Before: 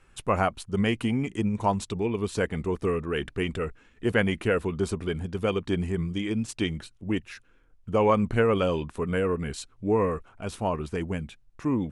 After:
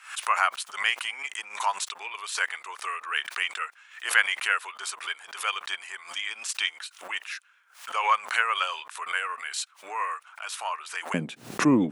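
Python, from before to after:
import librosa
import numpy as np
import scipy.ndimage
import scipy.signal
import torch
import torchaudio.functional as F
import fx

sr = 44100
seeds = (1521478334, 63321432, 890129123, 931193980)

y = fx.octave_divider(x, sr, octaves=1, level_db=-6.0)
y = fx.highpass(y, sr, hz=fx.steps((0.0, 1100.0), (11.14, 190.0)), slope=24)
y = fx.pre_swell(y, sr, db_per_s=130.0)
y = y * librosa.db_to_amplitude(7.0)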